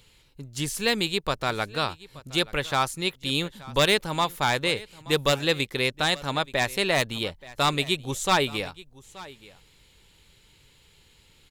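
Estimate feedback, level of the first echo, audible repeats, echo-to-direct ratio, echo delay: no regular repeats, -20.0 dB, 1, -20.0 dB, 877 ms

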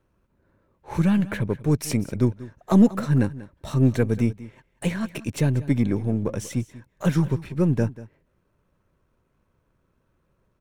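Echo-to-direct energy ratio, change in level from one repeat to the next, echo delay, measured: -17.5 dB, no regular repeats, 189 ms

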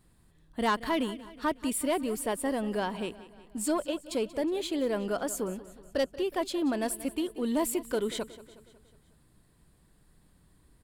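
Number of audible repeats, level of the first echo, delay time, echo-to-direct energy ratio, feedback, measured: 4, -17.0 dB, 183 ms, -15.5 dB, 54%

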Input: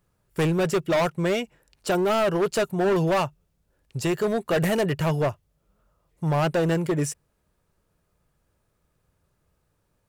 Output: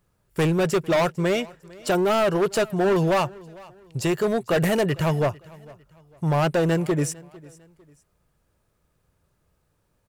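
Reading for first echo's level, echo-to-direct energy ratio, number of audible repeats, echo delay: -22.5 dB, -22.0 dB, 2, 451 ms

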